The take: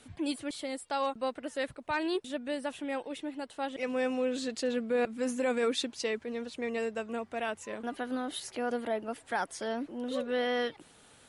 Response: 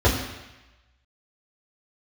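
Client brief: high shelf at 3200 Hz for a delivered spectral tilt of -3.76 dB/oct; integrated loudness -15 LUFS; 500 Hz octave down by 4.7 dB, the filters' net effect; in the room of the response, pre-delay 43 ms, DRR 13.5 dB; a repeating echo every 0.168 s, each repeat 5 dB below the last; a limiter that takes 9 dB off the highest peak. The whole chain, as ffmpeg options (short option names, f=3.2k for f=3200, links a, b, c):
-filter_complex "[0:a]equalizer=f=500:t=o:g=-5,highshelf=f=3.2k:g=-4,alimiter=level_in=7.5dB:limit=-24dB:level=0:latency=1,volume=-7.5dB,aecho=1:1:168|336|504|672|840|1008|1176:0.562|0.315|0.176|0.0988|0.0553|0.031|0.0173,asplit=2[a][b];[1:a]atrim=start_sample=2205,adelay=43[c];[b][c]afir=irnorm=-1:irlink=0,volume=-32.5dB[d];[a][d]amix=inputs=2:normalize=0,volume=24dB"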